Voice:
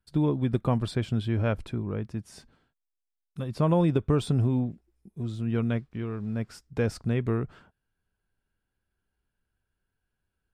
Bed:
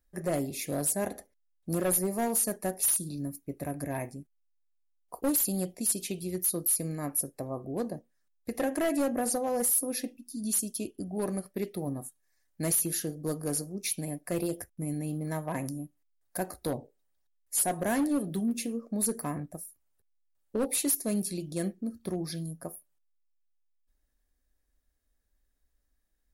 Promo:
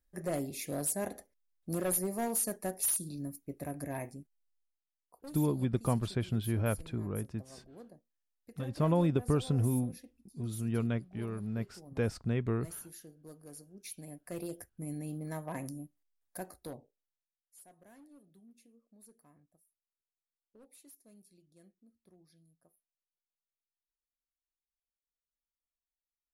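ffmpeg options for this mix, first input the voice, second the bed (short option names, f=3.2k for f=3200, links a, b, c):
-filter_complex "[0:a]adelay=5200,volume=-5dB[a];[1:a]volume=8.5dB,afade=t=out:st=4.57:d=0.23:silence=0.188365,afade=t=in:st=13.56:d=1.39:silence=0.223872,afade=t=out:st=15.93:d=1.42:silence=0.0630957[b];[a][b]amix=inputs=2:normalize=0"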